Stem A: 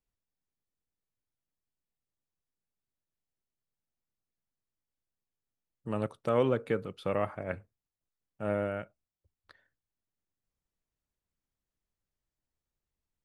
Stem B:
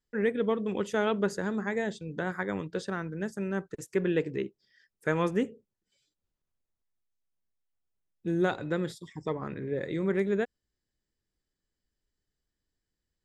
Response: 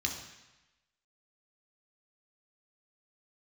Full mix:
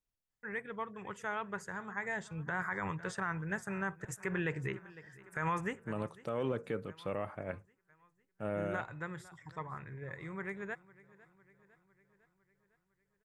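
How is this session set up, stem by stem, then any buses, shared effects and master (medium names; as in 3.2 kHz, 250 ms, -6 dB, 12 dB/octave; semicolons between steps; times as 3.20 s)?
-3.5 dB, 0.00 s, no send, no echo send, none
1.93 s -10.5 dB -> 2.39 s -2 dB -> 5.53 s -2 dB -> 5.93 s -10.5 dB, 0.30 s, no send, echo send -21 dB, graphic EQ 125/250/500/1000/2000/4000/8000 Hz +9/-11/-6/+9/+7/-9/+5 dB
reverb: none
echo: feedback delay 504 ms, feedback 58%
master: peak limiter -25 dBFS, peak gain reduction 11 dB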